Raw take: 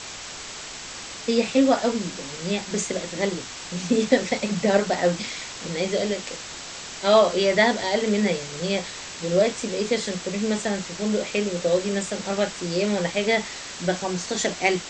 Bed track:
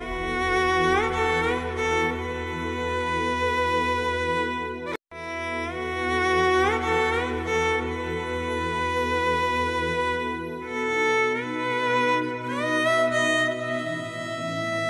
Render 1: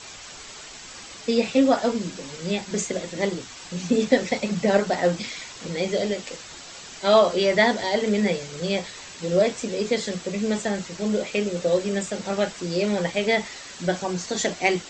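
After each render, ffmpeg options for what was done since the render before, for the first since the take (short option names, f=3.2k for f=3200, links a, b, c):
-af "afftdn=nr=7:nf=-37"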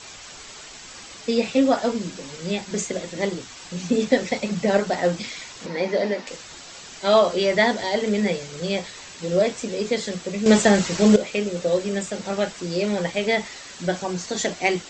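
-filter_complex "[0:a]asettb=1/sr,asplit=3[a][b][c];[a]atrim=end=5.664[d];[b]atrim=start=5.66:end=6.27,asetpts=PTS-STARTPTS,afade=t=in:d=0.004:c=qsin,afade=t=out:st=0.606:d=0.004:c=qsin,highpass=200,equalizer=f=250:t=q:w=4:g=8,equalizer=f=600:t=q:w=4:g=3,equalizer=f=930:t=q:w=4:g=10,equalizer=f=1.8k:t=q:w=4:g=7,equalizer=f=3.2k:t=q:w=4:g=-7,lowpass=f=5.3k:w=0.5412,lowpass=f=5.3k:w=1.3066[e];[c]atrim=start=6.266[f];[d][e]acrossfade=d=0.004:c1=hsin:c2=qsin[g];[g][f]acrossfade=d=0.004:c1=qsin:c2=hsin,asplit=3[h][i][j];[h]atrim=end=10.462[k];[i]atrim=start=10.458:end=11.162,asetpts=PTS-STARTPTS,volume=10dB[l];[j]atrim=start=11.158[m];[k][l]acrossfade=d=0.004:c1=hsin:c2=hsin[n];[n][m]acrossfade=d=0.004:c1=hsin:c2=hsin"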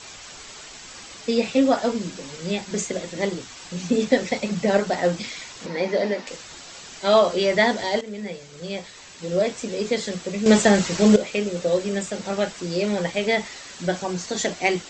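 -filter_complex "[0:a]asplit=2[a][b];[a]atrim=end=8.01,asetpts=PTS-STARTPTS,afade=t=out:st=8.006:d=0.004:c=hsin:silence=0.211349[c];[b]atrim=start=8.01,asetpts=PTS-STARTPTS,afade=t=in:d=1.86:silence=0.211349[d];[c][d]concat=n=2:v=0:a=1"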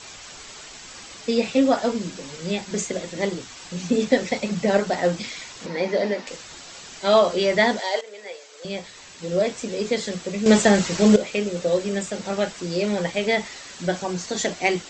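-filter_complex "[0:a]asettb=1/sr,asplit=3[a][b][c];[a]atrim=end=7.794[d];[b]atrim=start=7.79:end=8.65,asetpts=PTS-STARTPTS,afade=t=in:d=0.004:c=qsin,afade=t=out:st=0.856:d=0.004:c=qsin,highpass=f=450:w=0.5412,highpass=f=450:w=1.3066[e];[c]atrim=start=8.646[f];[d][e]acrossfade=d=0.004:c1=hsin:c2=qsin[g];[g][f]acrossfade=d=0.004:c1=qsin:c2=hsin"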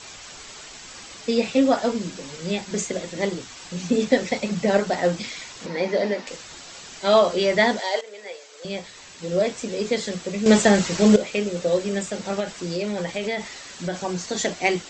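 -filter_complex "[0:a]asettb=1/sr,asplit=3[a][b][c];[a]atrim=end=12.404[d];[b]atrim=start=12.4:end=13.96,asetpts=PTS-STARTPTS,afade=t=in:d=0.004:c=qsin,afade=t=out:st=1.556:d=0.004:c=qsin,acompressor=threshold=-23dB:ratio=3:attack=3.2:release=140:knee=1:detection=peak[e];[c]atrim=start=13.956[f];[d][e]acrossfade=d=0.004:c1=hsin:c2=qsin[g];[g][f]acrossfade=d=0.004:c1=qsin:c2=hsin"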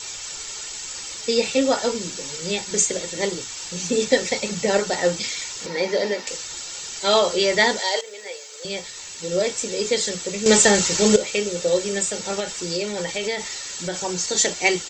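-af "aemphasis=mode=production:type=75fm,aecho=1:1:2.2:0.38"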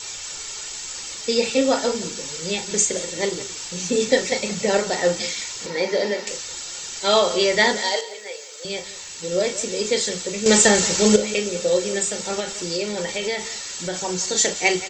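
-filter_complex "[0:a]asplit=2[a][b];[b]adelay=38,volume=-11.5dB[c];[a][c]amix=inputs=2:normalize=0,aecho=1:1:176:0.158"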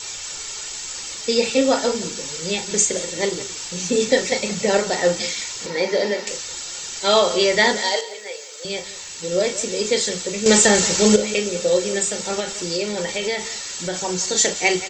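-af "volume=1.5dB,alimiter=limit=-3dB:level=0:latency=1"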